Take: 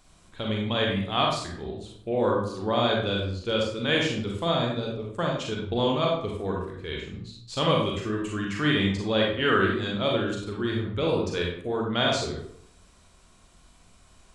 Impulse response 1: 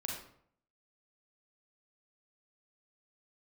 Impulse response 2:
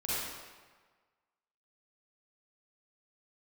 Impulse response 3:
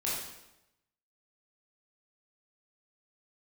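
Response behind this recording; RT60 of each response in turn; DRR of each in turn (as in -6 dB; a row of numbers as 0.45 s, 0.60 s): 1; 0.65 s, 1.4 s, 0.90 s; -1.5 dB, -10.0 dB, -7.0 dB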